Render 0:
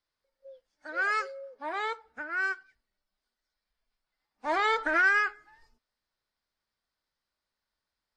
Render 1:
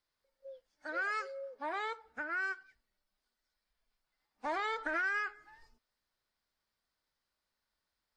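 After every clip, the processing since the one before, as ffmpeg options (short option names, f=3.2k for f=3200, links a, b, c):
-af "acompressor=threshold=-35dB:ratio=3"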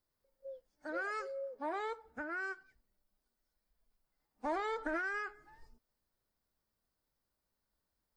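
-af "equalizer=f=2.8k:w=0.31:g=-13.5,volume=6.5dB"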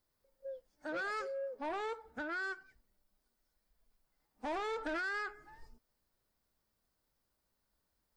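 -af "asoftclip=type=tanh:threshold=-37dB,volume=3.5dB"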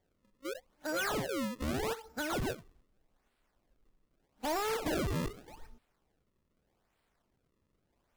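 -af "acrusher=samples=33:mix=1:aa=0.000001:lfo=1:lforange=52.8:lforate=0.82,volume=4.5dB"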